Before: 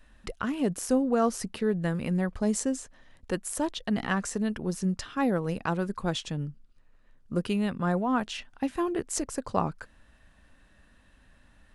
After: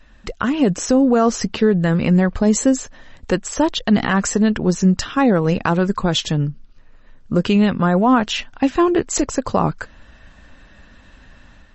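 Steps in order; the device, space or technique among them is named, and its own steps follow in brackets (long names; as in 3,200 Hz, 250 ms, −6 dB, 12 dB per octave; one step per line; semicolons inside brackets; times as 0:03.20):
low-bitrate web radio (automatic gain control gain up to 5.5 dB; brickwall limiter −13.5 dBFS, peak gain reduction 7.5 dB; level +8.5 dB; MP3 32 kbit/s 32,000 Hz)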